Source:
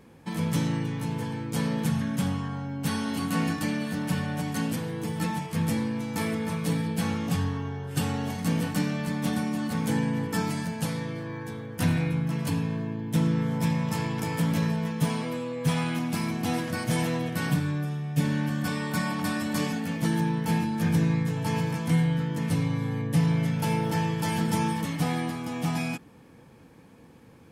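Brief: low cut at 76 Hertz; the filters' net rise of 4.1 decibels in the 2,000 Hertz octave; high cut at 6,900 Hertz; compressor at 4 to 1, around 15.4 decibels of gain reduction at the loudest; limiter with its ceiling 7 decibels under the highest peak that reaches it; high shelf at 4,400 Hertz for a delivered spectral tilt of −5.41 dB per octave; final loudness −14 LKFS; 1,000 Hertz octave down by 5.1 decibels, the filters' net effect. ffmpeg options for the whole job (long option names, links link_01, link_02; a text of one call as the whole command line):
ffmpeg -i in.wav -af "highpass=76,lowpass=6900,equalizer=frequency=1000:width_type=o:gain=-8,equalizer=frequency=2000:width_type=o:gain=6.5,highshelf=frequency=4400:gain=5,acompressor=threshold=-39dB:ratio=4,volume=27.5dB,alimiter=limit=-5.5dB:level=0:latency=1" out.wav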